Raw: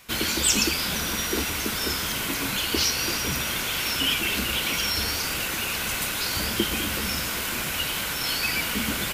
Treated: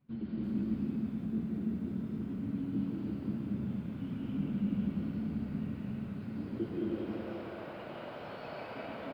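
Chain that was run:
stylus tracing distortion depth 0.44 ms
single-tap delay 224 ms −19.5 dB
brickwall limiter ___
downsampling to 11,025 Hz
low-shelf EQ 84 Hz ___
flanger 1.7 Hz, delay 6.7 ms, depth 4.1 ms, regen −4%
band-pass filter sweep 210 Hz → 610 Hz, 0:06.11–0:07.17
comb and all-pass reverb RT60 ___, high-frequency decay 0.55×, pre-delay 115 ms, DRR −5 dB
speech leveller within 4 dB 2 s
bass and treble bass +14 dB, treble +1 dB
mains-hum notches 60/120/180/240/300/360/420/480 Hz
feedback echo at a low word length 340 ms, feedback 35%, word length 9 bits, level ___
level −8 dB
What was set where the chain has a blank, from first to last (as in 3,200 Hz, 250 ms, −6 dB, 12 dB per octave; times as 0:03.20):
−13.5 dBFS, −5.5 dB, 2.8 s, −12 dB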